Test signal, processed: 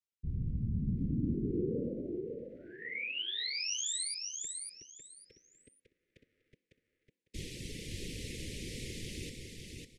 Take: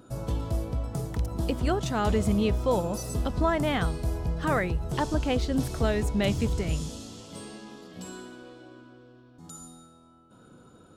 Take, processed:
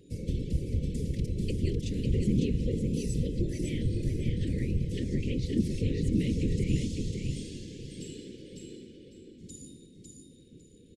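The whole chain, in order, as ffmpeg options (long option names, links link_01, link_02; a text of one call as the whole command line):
ffmpeg -i in.wav -filter_complex "[0:a]lowpass=frequency=11000:width=0.5412,lowpass=frequency=11000:width=1.3066,highshelf=frequency=7700:gain=-6,bandreject=frequency=282.8:width_type=h:width=4,bandreject=frequency=565.6:width_type=h:width=4,bandreject=frequency=848.4:width_type=h:width=4,bandreject=frequency=1131.2:width_type=h:width=4,bandreject=frequency=1414:width_type=h:width=4,bandreject=frequency=1696.8:width_type=h:width=4,bandreject=frequency=1979.6:width_type=h:width=4,bandreject=frequency=2262.4:width_type=h:width=4,bandreject=frequency=2545.2:width_type=h:width=4,bandreject=frequency=2828:width_type=h:width=4,bandreject=frequency=3110.8:width_type=h:width=4,bandreject=frequency=3393.6:width_type=h:width=4,bandreject=frequency=3676.4:width_type=h:width=4,bandreject=frequency=3959.2:width_type=h:width=4,bandreject=frequency=4242:width_type=h:width=4,bandreject=frequency=4524.8:width_type=h:width=4,bandreject=frequency=4807.6:width_type=h:width=4,bandreject=frequency=5090.4:width_type=h:width=4,bandreject=frequency=5373.2:width_type=h:width=4,bandreject=frequency=5656:width_type=h:width=4,bandreject=frequency=5938.8:width_type=h:width=4,bandreject=frequency=6221.6:width_type=h:width=4,bandreject=frequency=6504.4:width_type=h:width=4,bandreject=frequency=6787.2:width_type=h:width=4,bandreject=frequency=7070:width_type=h:width=4,acrossover=split=250[link_01][link_02];[link_02]acompressor=threshold=-34dB:ratio=6[link_03];[link_01][link_03]amix=inputs=2:normalize=0,afftfilt=real='hypot(re,im)*cos(2*PI*random(0))':imag='hypot(re,im)*sin(2*PI*random(1))':win_size=512:overlap=0.75,asuperstop=centerf=1000:order=12:qfactor=0.67,aecho=1:1:552|1104|1656:0.631|0.145|0.0334,volume=5dB" out.wav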